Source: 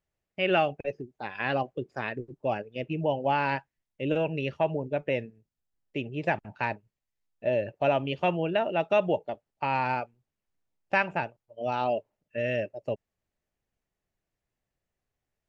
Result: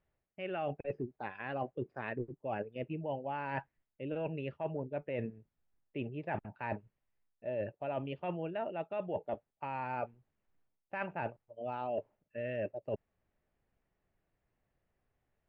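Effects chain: reverse; compressor 12:1, threshold -39 dBFS, peak gain reduction 20.5 dB; reverse; LPF 2200 Hz 12 dB/oct; gain +5 dB

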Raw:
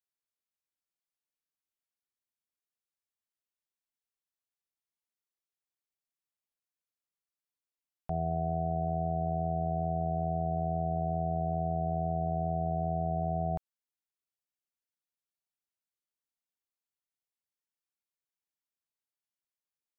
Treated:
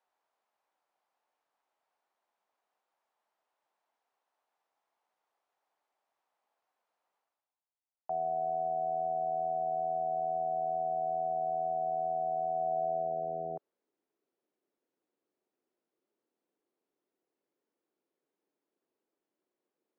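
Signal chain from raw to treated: HPF 170 Hz 12 dB/oct; reverse; upward compressor, threshold -54 dBFS; reverse; band-pass sweep 800 Hz -> 360 Hz, 12.52–13.9; gain +3.5 dB

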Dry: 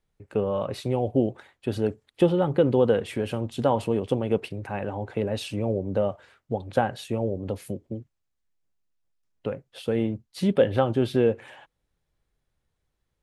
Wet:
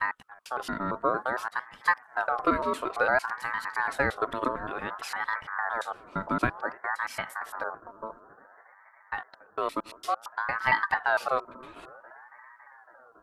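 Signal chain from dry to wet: slices in reverse order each 0.114 s, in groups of 4; high shelf 8200 Hz +6.5 dB; analogue delay 0.278 s, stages 2048, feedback 83%, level -23 dB; ring modulator with a swept carrier 1100 Hz, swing 30%, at 0.56 Hz; gain -1.5 dB

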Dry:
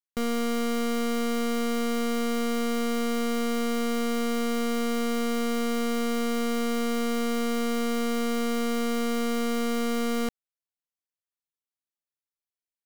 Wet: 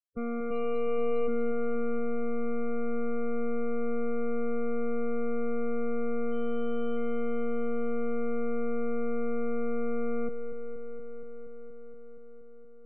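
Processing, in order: 0.5–1.28 comb 6 ms, depth 88%; 6.33–6.97 notch 2100 Hz; loudest bins only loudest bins 16; air absorption 280 m; darkening echo 0.236 s, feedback 83%, low-pass 4600 Hz, level -9 dB; gain -4.5 dB

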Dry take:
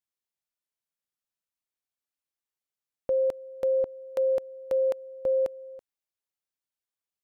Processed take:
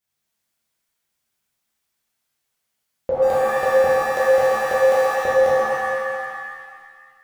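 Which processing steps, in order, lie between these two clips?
3.22–5.15 zero-crossing step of -41 dBFS; shimmer reverb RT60 1.7 s, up +7 st, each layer -2 dB, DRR -8.5 dB; gain +5.5 dB

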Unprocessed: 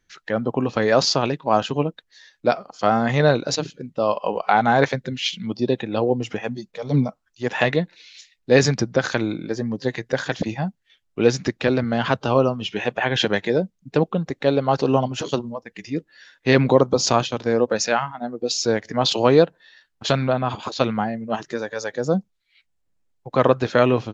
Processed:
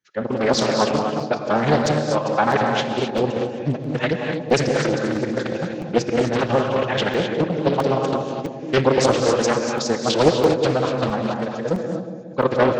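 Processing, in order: regenerating reverse delay 0.376 s, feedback 59%, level -9 dB; gate -24 dBFS, range -11 dB; HPF 120 Hz 12 dB/oct; bell 270 Hz -3 dB 0.2 oct; notch 710 Hz, Q 12; time stretch by phase-locked vocoder 0.53×; analogue delay 0.18 s, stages 1024, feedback 56%, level -8 dB; non-linear reverb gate 0.28 s rising, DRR 3.5 dB; crackling interface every 0.66 s, samples 128, zero, from 0.54; Doppler distortion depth 0.48 ms

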